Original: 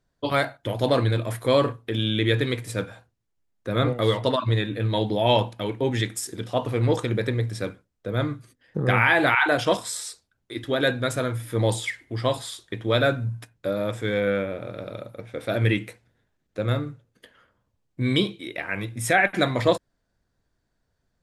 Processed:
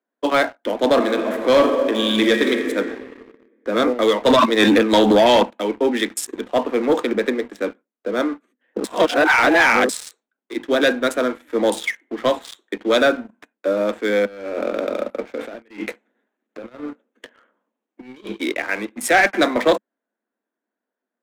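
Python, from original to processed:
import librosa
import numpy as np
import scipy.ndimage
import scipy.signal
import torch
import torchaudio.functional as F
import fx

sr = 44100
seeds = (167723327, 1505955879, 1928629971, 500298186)

y = fx.reverb_throw(x, sr, start_s=0.93, length_s=1.81, rt60_s=2.2, drr_db=3.5)
y = fx.env_flatten(y, sr, amount_pct=100, at=(4.26, 5.43))
y = fx.over_compress(y, sr, threshold_db=-35.0, ratio=-1.0, at=(14.25, 18.54))
y = fx.edit(y, sr, fx.reverse_span(start_s=8.84, length_s=1.05), tone=tone)
y = fx.wiener(y, sr, points=9)
y = scipy.signal.sosfilt(scipy.signal.butter(16, 210.0, 'highpass', fs=sr, output='sos'), y)
y = fx.leveller(y, sr, passes=2)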